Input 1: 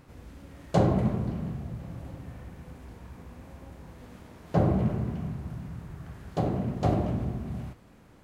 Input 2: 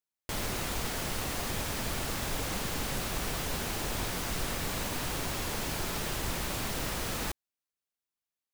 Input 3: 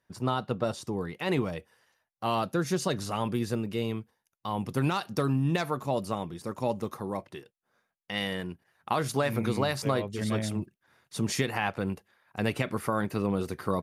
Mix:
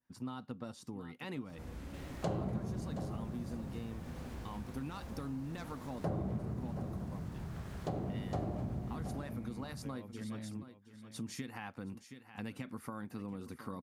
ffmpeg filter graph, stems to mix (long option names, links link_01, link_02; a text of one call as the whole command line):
ffmpeg -i stem1.wav -i stem2.wav -i stem3.wav -filter_complex "[0:a]adelay=1500,volume=2dB,asplit=2[link_01][link_02];[link_02]volume=-13.5dB[link_03];[1:a]lowpass=frequency=4000:poles=1,adelay=1650,volume=-18.5dB[link_04];[2:a]equalizer=frequency=250:width_type=o:width=0.33:gain=10,equalizer=frequency=400:width_type=o:width=0.33:gain=-6,equalizer=frequency=630:width_type=o:width=0.33:gain=-7,volume=-10dB,asplit=2[link_05][link_06];[link_06]volume=-16.5dB[link_07];[link_03][link_07]amix=inputs=2:normalize=0,aecho=0:1:721:1[link_08];[link_01][link_04][link_05][link_08]amix=inputs=4:normalize=0,adynamicequalizer=threshold=0.00158:dfrequency=2800:dqfactor=1.2:tfrequency=2800:tqfactor=1.2:attack=5:release=100:ratio=0.375:range=2.5:mode=cutabove:tftype=bell,acompressor=threshold=-41dB:ratio=2.5" out.wav